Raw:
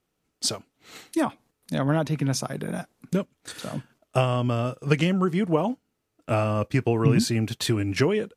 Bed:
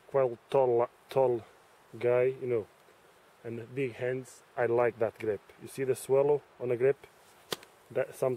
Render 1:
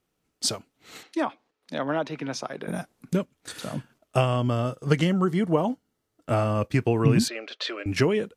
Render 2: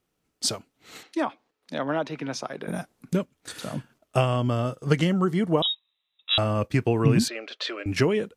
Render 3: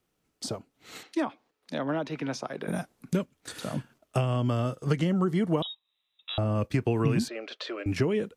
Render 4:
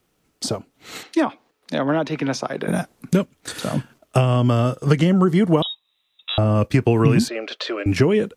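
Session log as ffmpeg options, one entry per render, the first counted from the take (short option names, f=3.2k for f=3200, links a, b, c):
-filter_complex "[0:a]asettb=1/sr,asplit=3[a][b][c];[a]atrim=end=1.034[d];[b]atrim=start=1.03:end=2.68,asetpts=PTS-STARTPTS,afade=t=in:d=0.004:c=qsin,afade=t=out:st=1.646:d=0.004:c=qsin,acrossover=split=280 5700:gain=0.141 1 0.0891[e][f][g];[e][f][g]amix=inputs=3:normalize=0[h];[c]atrim=start=2.676[i];[d][h]acrossfade=d=0.004:c1=hsin:c2=qsin[j];[j][i]acrossfade=d=0.004:c1=qsin:c2=hsin,asettb=1/sr,asplit=3[k][l][m];[k]atrim=end=4.384[n];[l]atrim=start=4.38:end=6.55,asetpts=PTS-STARTPTS,afade=t=in:d=0.004:c=qsin,afade=t=out:st=2.166:d=0.004:c=qsin,bandreject=f=2.5k:w=6.6[o];[m]atrim=start=6.546[p];[n][o]acrossfade=d=0.004:c1=hsin:c2=qsin[q];[q][p]acrossfade=d=0.004:c1=qsin:c2=hsin,asettb=1/sr,asplit=3[r][s][t];[r]atrim=end=7.284[u];[s]atrim=start=7.28:end=7.86,asetpts=PTS-STARTPTS,afade=t=in:d=0.004:c=qsin,afade=t=out:st=0.576:d=0.004:c=qsin,highpass=f=470:w=0.5412,highpass=f=470:w=1.3066,equalizer=f=560:t=q:w=4:g=8,equalizer=f=850:t=q:w=4:g=-10,equalizer=f=1.3k:t=q:w=4:g=4,lowpass=f=4.6k:w=0.5412,lowpass=f=4.6k:w=1.3066[v];[t]atrim=start=7.856[w];[u][v]acrossfade=d=0.004:c1=hsin:c2=qsin[x];[x][w]acrossfade=d=0.004:c1=qsin:c2=hsin"
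-filter_complex "[0:a]asettb=1/sr,asplit=3[a][b][c];[a]atrim=end=5.624[d];[b]atrim=start=5.62:end=6.38,asetpts=PTS-STARTPTS,afade=t=in:d=0.004:c=qsin,afade=t=out:st=0.756:d=0.004:c=qsin,lowpass=f=3.4k:t=q:w=0.5098,lowpass=f=3.4k:t=q:w=0.6013,lowpass=f=3.4k:t=q:w=0.9,lowpass=f=3.4k:t=q:w=2.563,afreqshift=-4000[e];[c]atrim=start=6.376[f];[d][e]acrossfade=d=0.004:c1=hsin:c2=qsin[g];[g][f]acrossfade=d=0.004:c1=qsin:c2=hsin"
-filter_complex "[0:a]acrossover=split=420|1100[a][b][c];[a]acompressor=threshold=-23dB:ratio=4[d];[b]acompressor=threshold=-34dB:ratio=4[e];[c]acompressor=threshold=-38dB:ratio=4[f];[d][e][f]amix=inputs=3:normalize=0"
-af "volume=9.5dB"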